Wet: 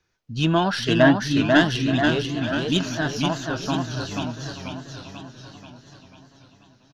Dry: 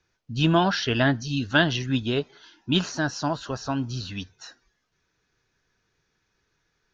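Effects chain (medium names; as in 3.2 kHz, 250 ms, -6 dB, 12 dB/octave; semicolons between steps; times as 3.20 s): tracing distortion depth 0.026 ms; 0.88–1.44 s: small resonant body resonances 300/640/1100/1600 Hz, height 10 dB; on a send: feedback delay 877 ms, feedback 37%, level -16.5 dB; on the sum: modulated delay 488 ms, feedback 54%, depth 148 cents, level -4 dB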